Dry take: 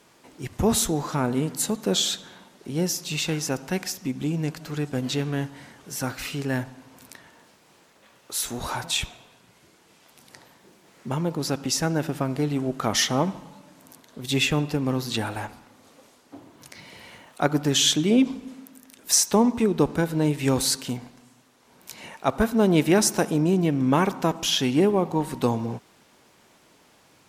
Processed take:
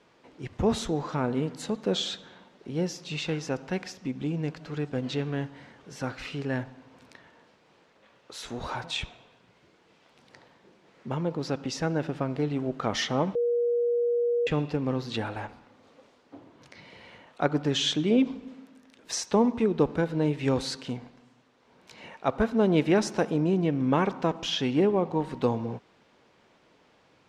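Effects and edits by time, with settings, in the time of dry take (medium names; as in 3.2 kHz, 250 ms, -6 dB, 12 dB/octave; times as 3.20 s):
13.35–14.47 s: bleep 477 Hz -22 dBFS
whole clip: low-pass 4 kHz 12 dB/octave; peaking EQ 490 Hz +4 dB 0.4 oct; trim -4 dB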